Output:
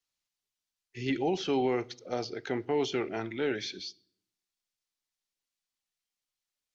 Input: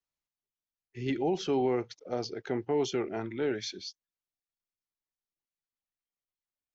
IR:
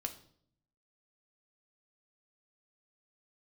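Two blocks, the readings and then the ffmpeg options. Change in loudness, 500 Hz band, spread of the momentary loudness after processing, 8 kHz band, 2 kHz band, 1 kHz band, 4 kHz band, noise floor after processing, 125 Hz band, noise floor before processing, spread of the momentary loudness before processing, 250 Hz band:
0.0 dB, -0.5 dB, 9 LU, n/a, +4.0 dB, +1.0 dB, +2.0 dB, under -85 dBFS, -1.0 dB, under -85 dBFS, 10 LU, 0.0 dB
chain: -filter_complex "[0:a]acrossover=split=2900[a][b];[b]acompressor=threshold=-50dB:ratio=4:attack=1:release=60[c];[a][c]amix=inputs=2:normalize=0,equalizer=f=5.4k:t=o:w=2.6:g=12,asplit=2[d][e];[1:a]atrim=start_sample=2205,lowpass=4.9k[f];[e][f]afir=irnorm=-1:irlink=0,volume=-8.5dB[g];[d][g]amix=inputs=2:normalize=0,volume=-3dB"

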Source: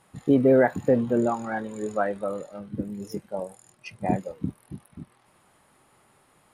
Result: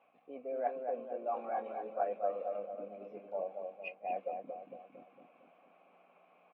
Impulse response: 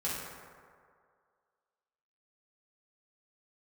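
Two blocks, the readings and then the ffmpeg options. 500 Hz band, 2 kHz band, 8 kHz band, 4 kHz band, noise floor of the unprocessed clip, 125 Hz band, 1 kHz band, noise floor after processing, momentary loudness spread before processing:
-12.5 dB, -16.5 dB, under -30 dB, under -15 dB, -62 dBFS, under -30 dB, -6.0 dB, -67 dBFS, 21 LU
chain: -filter_complex "[0:a]areverse,acompressor=threshold=-31dB:ratio=10,areverse,asplit=3[a][b][c];[a]bandpass=f=730:t=q:w=8,volume=0dB[d];[b]bandpass=f=1.09k:t=q:w=8,volume=-6dB[e];[c]bandpass=f=2.44k:t=q:w=8,volume=-9dB[f];[d][e][f]amix=inputs=3:normalize=0,aeval=exprs='val(0)+0.0001*(sin(2*PI*60*n/s)+sin(2*PI*2*60*n/s)/2+sin(2*PI*3*60*n/s)/3+sin(2*PI*4*60*n/s)/4+sin(2*PI*5*60*n/s)/5)':c=same,highpass=f=220:w=0.5412,highpass=f=220:w=1.3066,equalizer=f=350:t=q:w=4:g=-4,equalizer=f=510:t=q:w=4:g=5,equalizer=f=790:t=q:w=4:g=-4,equalizer=f=1.2k:t=q:w=4:g=-7,equalizer=f=2.2k:t=q:w=4:g=8,lowpass=f=3.1k:w=0.5412,lowpass=f=3.1k:w=1.3066,asplit=2[g][h];[h]adelay=228,lowpass=f=1.2k:p=1,volume=-4dB,asplit=2[i][j];[j]adelay=228,lowpass=f=1.2k:p=1,volume=0.55,asplit=2[k][l];[l]adelay=228,lowpass=f=1.2k:p=1,volume=0.55,asplit=2[m][n];[n]adelay=228,lowpass=f=1.2k:p=1,volume=0.55,asplit=2[o][p];[p]adelay=228,lowpass=f=1.2k:p=1,volume=0.55,asplit=2[q][r];[r]adelay=228,lowpass=f=1.2k:p=1,volume=0.55,asplit=2[s][t];[t]adelay=228,lowpass=f=1.2k:p=1,volume=0.55[u];[i][k][m][o][q][s][u]amix=inputs=7:normalize=0[v];[g][v]amix=inputs=2:normalize=0,volume=7dB" -ar 32000 -c:a aac -b:a 24k

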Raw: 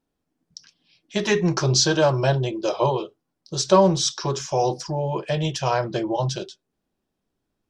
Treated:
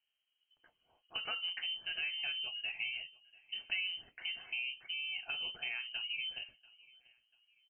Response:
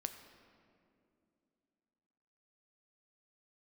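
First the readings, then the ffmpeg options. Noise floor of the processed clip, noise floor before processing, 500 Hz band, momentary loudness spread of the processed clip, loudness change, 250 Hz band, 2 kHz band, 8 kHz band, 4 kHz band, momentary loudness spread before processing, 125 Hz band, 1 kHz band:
-84 dBFS, -79 dBFS, under -40 dB, 8 LU, -15.5 dB, under -40 dB, -6.0 dB, under -40 dB, -8.0 dB, 11 LU, under -40 dB, -30.5 dB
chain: -af "acompressor=threshold=-33dB:ratio=3,aecho=1:1:690|1380:0.0708|0.0234,lowpass=f=2.7k:t=q:w=0.5098,lowpass=f=2.7k:t=q:w=0.6013,lowpass=f=2.7k:t=q:w=0.9,lowpass=f=2.7k:t=q:w=2.563,afreqshift=-3200,volume=-7dB"

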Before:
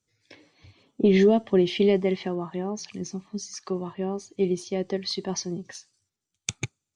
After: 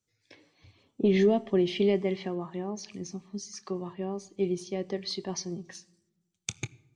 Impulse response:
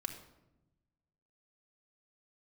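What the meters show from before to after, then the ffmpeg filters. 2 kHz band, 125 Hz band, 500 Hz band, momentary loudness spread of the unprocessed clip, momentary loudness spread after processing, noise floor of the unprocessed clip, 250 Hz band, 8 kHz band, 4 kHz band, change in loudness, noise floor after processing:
-4.5 dB, -4.5 dB, -4.5 dB, 16 LU, 16 LU, -85 dBFS, -4.5 dB, -4.5 dB, -4.5 dB, -4.5 dB, -78 dBFS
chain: -filter_complex "[0:a]asplit=2[a][b];[1:a]atrim=start_sample=2205,adelay=25[c];[b][c]afir=irnorm=-1:irlink=0,volume=-15dB[d];[a][d]amix=inputs=2:normalize=0,volume=-4.5dB"

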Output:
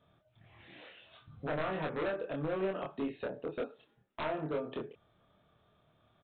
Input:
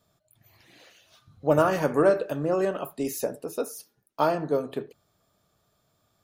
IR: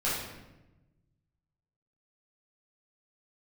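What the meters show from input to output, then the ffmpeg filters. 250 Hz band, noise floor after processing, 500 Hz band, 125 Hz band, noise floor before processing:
-9.5 dB, -72 dBFS, -12.0 dB, -9.5 dB, -72 dBFS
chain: -filter_complex "[0:a]acompressor=threshold=-37dB:ratio=2.5,aresample=8000,aeval=exprs='0.0316*(abs(mod(val(0)/0.0316+3,4)-2)-1)':c=same,aresample=44100,asplit=2[a][b];[b]adelay=26,volume=-2.5dB[c];[a][c]amix=inputs=2:normalize=0"

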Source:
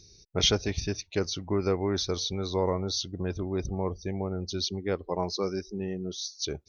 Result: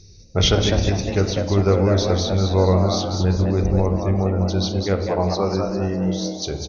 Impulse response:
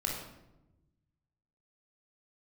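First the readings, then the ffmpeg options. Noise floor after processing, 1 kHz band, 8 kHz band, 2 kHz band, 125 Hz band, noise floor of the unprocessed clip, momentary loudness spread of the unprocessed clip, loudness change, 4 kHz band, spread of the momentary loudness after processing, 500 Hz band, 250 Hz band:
-44 dBFS, +10.0 dB, n/a, +8.0 dB, +15.0 dB, -56 dBFS, 8 LU, +10.0 dB, +5.0 dB, 5 LU, +9.5 dB, +11.0 dB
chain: -filter_complex "[0:a]highshelf=f=5.6k:g=-3,asplit=6[a][b][c][d][e][f];[b]adelay=200,afreqshift=130,volume=-6dB[g];[c]adelay=400,afreqshift=260,volume=-14.4dB[h];[d]adelay=600,afreqshift=390,volume=-22.8dB[i];[e]adelay=800,afreqshift=520,volume=-31.2dB[j];[f]adelay=1000,afreqshift=650,volume=-39.6dB[k];[a][g][h][i][j][k]amix=inputs=6:normalize=0,asplit=2[l][m];[1:a]atrim=start_sample=2205,lowpass=2.8k,lowshelf=f=140:g=8[n];[m][n]afir=irnorm=-1:irlink=0,volume=-7dB[o];[l][o]amix=inputs=2:normalize=0,volume=4.5dB" -ar 22050 -c:a libvorbis -b:a 48k

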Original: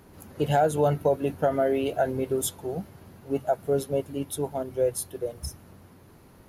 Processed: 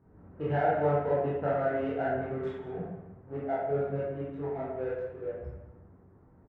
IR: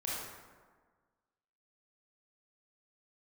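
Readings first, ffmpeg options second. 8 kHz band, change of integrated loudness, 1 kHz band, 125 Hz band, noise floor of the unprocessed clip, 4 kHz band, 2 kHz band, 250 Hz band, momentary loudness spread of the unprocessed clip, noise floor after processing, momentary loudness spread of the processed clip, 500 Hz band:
under -40 dB, -4.5 dB, -3.5 dB, -4.0 dB, -53 dBFS, under -15 dB, -0.5 dB, -5.5 dB, 11 LU, -58 dBFS, 13 LU, -4.5 dB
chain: -filter_complex "[0:a]adynamicsmooth=sensitivity=5:basefreq=710,lowpass=f=1.8k:t=q:w=1.5,aecho=1:1:195:0.141[a];[1:a]atrim=start_sample=2205,asetrate=70560,aresample=44100[b];[a][b]afir=irnorm=-1:irlink=0,volume=-4dB"

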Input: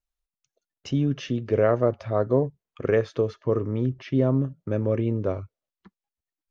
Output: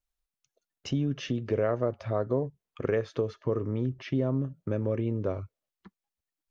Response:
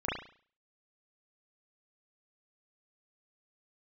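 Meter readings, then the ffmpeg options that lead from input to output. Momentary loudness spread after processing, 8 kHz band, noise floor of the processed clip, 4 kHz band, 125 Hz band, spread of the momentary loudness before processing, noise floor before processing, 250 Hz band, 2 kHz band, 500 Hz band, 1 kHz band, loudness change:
6 LU, n/a, under -85 dBFS, -1.5 dB, -5.0 dB, 7 LU, under -85 dBFS, -5.0 dB, -5.0 dB, -6.0 dB, -6.0 dB, -5.5 dB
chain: -af "acompressor=threshold=-28dB:ratio=2"

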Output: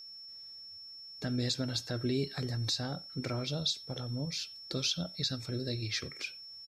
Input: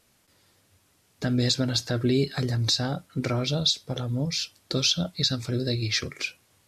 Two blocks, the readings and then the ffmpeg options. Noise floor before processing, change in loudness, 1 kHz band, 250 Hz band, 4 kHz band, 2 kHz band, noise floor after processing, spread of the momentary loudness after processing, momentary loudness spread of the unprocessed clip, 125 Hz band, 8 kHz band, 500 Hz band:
-65 dBFS, -8.5 dB, -9.0 dB, -9.0 dB, -8.5 dB, -9.0 dB, -49 dBFS, 13 LU, 7 LU, -9.0 dB, -9.0 dB, -9.0 dB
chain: -filter_complex "[0:a]asplit=2[a][b];[b]adelay=90,highpass=300,lowpass=3.4k,asoftclip=type=hard:threshold=-20dB,volume=-23dB[c];[a][c]amix=inputs=2:normalize=0,aeval=exprs='val(0)+0.0141*sin(2*PI*5400*n/s)':c=same,volume=-9dB"

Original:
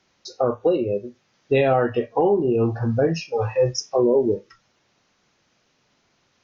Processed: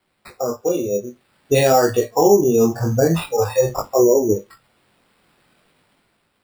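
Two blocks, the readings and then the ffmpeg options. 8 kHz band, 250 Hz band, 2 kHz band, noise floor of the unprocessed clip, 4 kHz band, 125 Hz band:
n/a, +3.5 dB, +3.0 dB, -67 dBFS, +4.0 dB, +2.5 dB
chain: -af "dynaudnorm=f=340:g=5:m=10dB,flanger=delay=18.5:depth=5.4:speed=0.49,acrusher=samples=7:mix=1:aa=0.000001"

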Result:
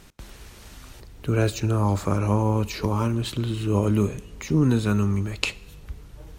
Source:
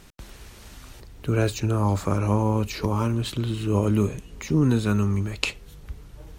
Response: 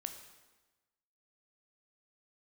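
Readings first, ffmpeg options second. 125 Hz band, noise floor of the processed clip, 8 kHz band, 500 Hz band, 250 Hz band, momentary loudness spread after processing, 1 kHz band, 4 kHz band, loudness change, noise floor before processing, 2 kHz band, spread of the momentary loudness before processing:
+0.5 dB, -46 dBFS, 0.0 dB, +0.5 dB, 0.0 dB, 15 LU, 0.0 dB, 0.0 dB, +0.5 dB, -47 dBFS, +0.5 dB, 16 LU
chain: -filter_complex "[0:a]asplit=2[a][b];[1:a]atrim=start_sample=2205[c];[b][c]afir=irnorm=-1:irlink=0,volume=-10dB[d];[a][d]amix=inputs=2:normalize=0,volume=-1.5dB"

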